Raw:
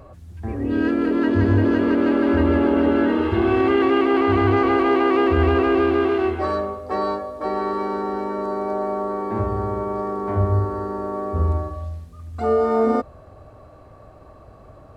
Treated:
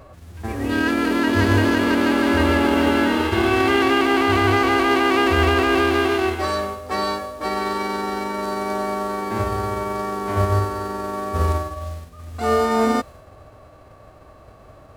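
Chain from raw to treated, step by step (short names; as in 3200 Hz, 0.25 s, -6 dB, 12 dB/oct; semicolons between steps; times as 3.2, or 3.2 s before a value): spectral whitening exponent 0.6; mismatched tape noise reduction decoder only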